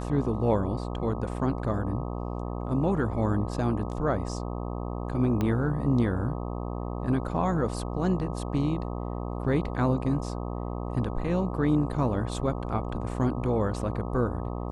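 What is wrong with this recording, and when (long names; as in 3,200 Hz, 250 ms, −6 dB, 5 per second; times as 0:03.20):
mains buzz 60 Hz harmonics 21 −33 dBFS
0:05.41: click −16 dBFS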